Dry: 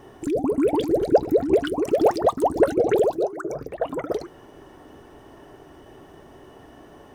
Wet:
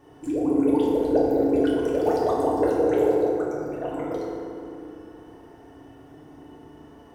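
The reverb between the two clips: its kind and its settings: FDN reverb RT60 2.6 s, low-frequency decay 1.5×, high-frequency decay 0.5×, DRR -6 dB; gain -10.5 dB

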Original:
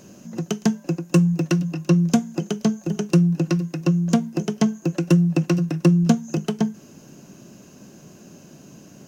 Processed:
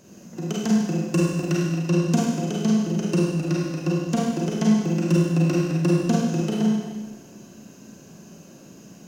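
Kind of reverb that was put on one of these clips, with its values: Schroeder reverb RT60 1.3 s, combs from 33 ms, DRR -5 dB; gain -6 dB

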